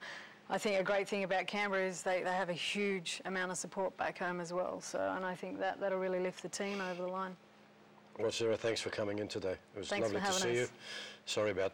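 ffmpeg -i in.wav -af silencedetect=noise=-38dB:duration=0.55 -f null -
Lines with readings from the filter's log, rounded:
silence_start: 7.29
silence_end: 8.16 | silence_duration: 0.86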